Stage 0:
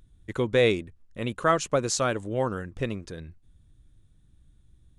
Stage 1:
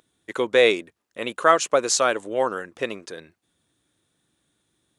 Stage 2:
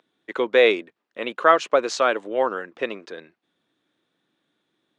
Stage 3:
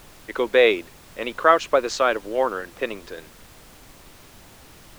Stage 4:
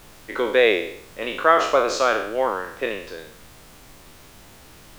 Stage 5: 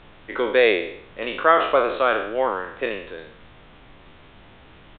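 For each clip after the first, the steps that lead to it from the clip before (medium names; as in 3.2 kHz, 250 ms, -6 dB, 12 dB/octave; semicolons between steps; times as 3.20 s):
high-pass 420 Hz 12 dB/octave; trim +6.5 dB
three-band isolator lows -23 dB, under 170 Hz, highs -23 dB, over 4.5 kHz; trim +1 dB
added noise pink -47 dBFS
spectral sustain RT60 0.66 s; trim -1.5 dB
resampled via 8 kHz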